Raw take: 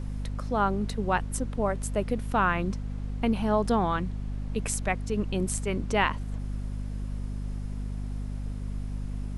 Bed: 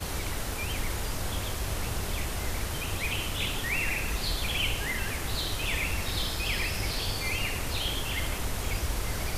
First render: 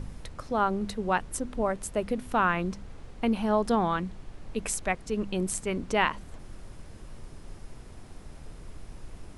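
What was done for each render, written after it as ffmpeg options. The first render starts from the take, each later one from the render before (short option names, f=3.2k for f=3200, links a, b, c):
-af "bandreject=f=50:t=h:w=4,bandreject=f=100:t=h:w=4,bandreject=f=150:t=h:w=4,bandreject=f=200:t=h:w=4,bandreject=f=250:t=h:w=4"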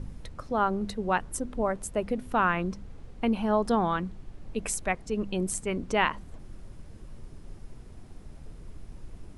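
-af "afftdn=nr=6:nf=-47"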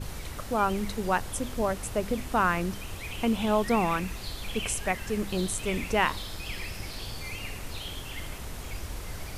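-filter_complex "[1:a]volume=-7.5dB[a];[0:a][a]amix=inputs=2:normalize=0"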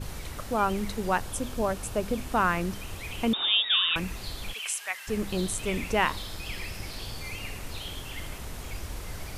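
-filter_complex "[0:a]asettb=1/sr,asplit=3[a][b][c];[a]atrim=end=1.254[d];[b]atrim=start=1.25:end=2.26,asetpts=PTS-STARTPTS,afade=t=in:d=0.004:c=qsin,afade=t=out:st=1.006:d=0.004:c=qsin,bandreject=f=2k:w=10[e];[c]atrim=start=2.256[f];[d][e]acrossfade=d=0.004:c1=hsin:c2=qsin[g];[g][f]acrossfade=d=0.004:c1=qsin:c2=hsin,asettb=1/sr,asplit=3[h][i][j];[h]atrim=end=3.334[k];[i]atrim=start=3.33:end=3.96,asetpts=PTS-STARTPTS,afade=t=in:d=0.004:c=qsin,afade=t=out:st=0.626:d=0.004:c=qsin,lowpass=f=3.2k:t=q:w=0.5098,lowpass=f=3.2k:t=q:w=0.6013,lowpass=f=3.2k:t=q:w=0.9,lowpass=f=3.2k:t=q:w=2.563,afreqshift=-3800[l];[j]atrim=start=3.956[m];[k][l]acrossfade=d=0.004:c1=hsin:c2=qsin[n];[n][m]acrossfade=d=0.004:c1=qsin:c2=hsin,asplit=3[o][p][q];[o]afade=t=out:st=4.52:d=0.02[r];[p]highpass=1.3k,afade=t=in:st=4.52:d=0.02,afade=t=out:st=5.07:d=0.02[s];[q]afade=t=in:st=5.07:d=0.02[t];[r][s][t]amix=inputs=3:normalize=0"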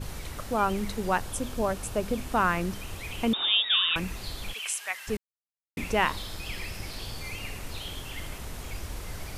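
-filter_complex "[0:a]asplit=3[a][b][c];[a]atrim=end=5.17,asetpts=PTS-STARTPTS,afade=t=out:st=5.166:d=0.004:c=hsin[d];[b]atrim=start=5.17:end=5.77,asetpts=PTS-STARTPTS,volume=0[e];[c]atrim=start=5.77,asetpts=PTS-STARTPTS,afade=t=in:d=0.004:c=hsin[f];[d][e][f]concat=n=3:v=0:a=1"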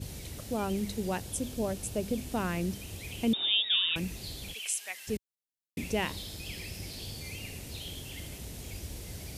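-af "highpass=62,equalizer=f=1.2k:t=o:w=1.5:g=-15"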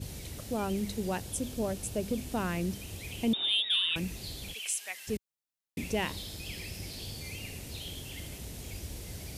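-af "asoftclip=type=tanh:threshold=-17dB"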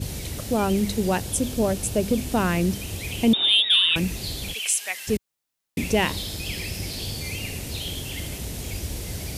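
-af "volume=10dB"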